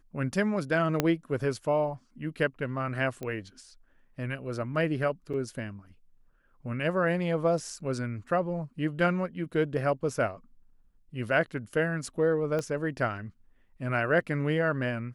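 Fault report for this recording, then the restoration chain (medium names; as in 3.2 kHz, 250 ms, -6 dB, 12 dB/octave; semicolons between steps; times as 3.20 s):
1.00 s: pop -9 dBFS
3.23 s: pop -23 dBFS
5.33–5.34 s: dropout 6.5 ms
12.59 s: pop -19 dBFS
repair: de-click; interpolate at 5.33 s, 6.5 ms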